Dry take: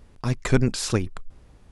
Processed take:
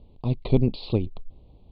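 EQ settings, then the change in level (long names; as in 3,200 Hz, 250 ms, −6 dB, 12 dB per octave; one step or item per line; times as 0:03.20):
Butterworth band-reject 1,600 Hz, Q 0.72
Butterworth low-pass 4,400 Hz 96 dB per octave
high-frequency loss of the air 85 metres
0.0 dB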